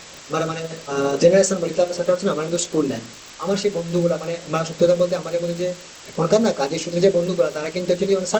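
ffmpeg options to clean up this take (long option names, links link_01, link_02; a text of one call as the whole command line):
ffmpeg -i in.wav -af "adeclick=threshold=4,afwtdn=0.014" out.wav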